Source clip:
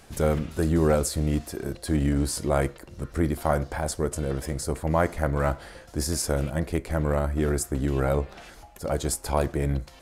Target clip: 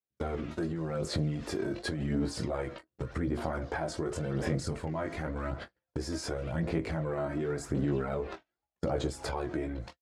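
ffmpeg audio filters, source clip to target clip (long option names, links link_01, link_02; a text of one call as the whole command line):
ffmpeg -i in.wav -filter_complex "[0:a]flanger=delay=15.5:depth=5.3:speed=0.33,dynaudnorm=framelen=210:gausssize=3:maxgain=16dB,asettb=1/sr,asplit=3[link_01][link_02][link_03];[link_01]atrim=end=4.564[link_04];[link_02]atrim=start=4.56:end=5.67,asetpts=PTS-STARTPTS,afade=type=in:duration=0.004:curve=qsin,afade=type=out:start_time=1.106:duration=0.004:curve=qsin,equalizer=frequency=760:width=0.71:gain=-5.5[link_05];[link_03]atrim=start=5.666[link_06];[link_04][link_05]acrossfade=duration=0.004:curve1=hsin:curve2=qsin[link_07];[link_07][link_06]acrossfade=duration=0.004:curve1=qsin:curve2=hsin,agate=range=-54dB:threshold=-26dB:ratio=16:detection=peak,alimiter=limit=-15dB:level=0:latency=1:release=52,highshelf=frequency=3900:gain=-6.5,asplit=2[link_08][link_09];[link_09]adelay=25,volume=-13.5dB[link_10];[link_08][link_10]amix=inputs=2:normalize=0,acompressor=threshold=-32dB:ratio=10,highpass=100,lowpass=5900,aphaser=in_gain=1:out_gain=1:delay=3.2:decay=0.41:speed=0.89:type=sinusoidal,volume=2dB" out.wav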